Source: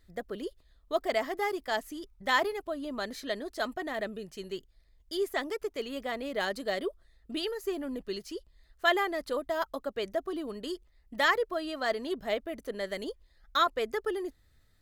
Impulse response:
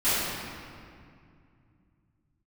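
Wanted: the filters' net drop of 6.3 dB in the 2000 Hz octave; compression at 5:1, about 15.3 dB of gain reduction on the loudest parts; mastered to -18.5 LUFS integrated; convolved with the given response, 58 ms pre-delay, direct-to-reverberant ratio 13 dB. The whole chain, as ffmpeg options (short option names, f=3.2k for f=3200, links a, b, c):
-filter_complex "[0:a]equalizer=f=2k:t=o:g=-7.5,acompressor=threshold=-41dB:ratio=5,asplit=2[a][b];[1:a]atrim=start_sample=2205,adelay=58[c];[b][c]afir=irnorm=-1:irlink=0,volume=-28.5dB[d];[a][d]amix=inputs=2:normalize=0,volume=26dB"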